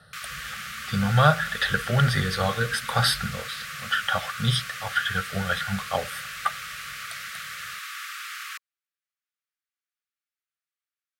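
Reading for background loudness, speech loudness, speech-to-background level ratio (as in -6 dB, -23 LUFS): -35.0 LUFS, -25.5 LUFS, 9.5 dB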